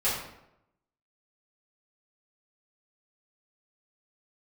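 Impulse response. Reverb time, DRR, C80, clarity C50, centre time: 0.85 s, −11.5 dB, 5.5 dB, 2.5 dB, 51 ms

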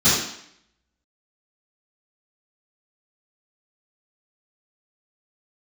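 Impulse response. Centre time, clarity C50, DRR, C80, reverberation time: 61 ms, 0.0 dB, −16.0 dB, 4.0 dB, 0.70 s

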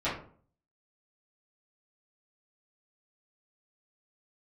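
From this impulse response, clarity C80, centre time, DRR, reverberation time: 11.0 dB, 34 ms, −12.5 dB, 0.50 s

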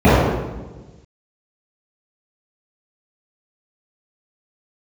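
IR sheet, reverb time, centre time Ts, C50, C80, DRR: 1.2 s, 114 ms, −4.0 dB, −0.5 dB, −18.5 dB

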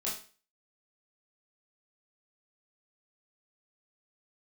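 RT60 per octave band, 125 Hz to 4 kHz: 0.35, 0.40, 0.40, 0.40, 0.40, 0.40 seconds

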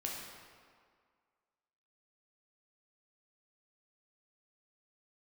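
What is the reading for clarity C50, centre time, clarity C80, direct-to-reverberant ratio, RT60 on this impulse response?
0.5 dB, 90 ms, 2.5 dB, −3.0 dB, 1.9 s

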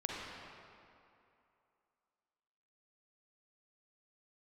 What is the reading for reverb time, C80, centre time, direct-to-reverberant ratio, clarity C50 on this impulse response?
2.7 s, −0.5 dB, 148 ms, −3.0 dB, −2.5 dB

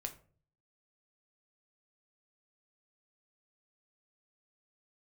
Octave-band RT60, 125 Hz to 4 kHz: 0.75, 0.60, 0.50, 0.35, 0.35, 0.25 seconds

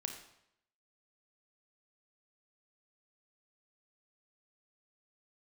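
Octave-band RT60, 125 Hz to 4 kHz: 0.75, 0.75, 0.75, 0.75, 0.75, 0.70 seconds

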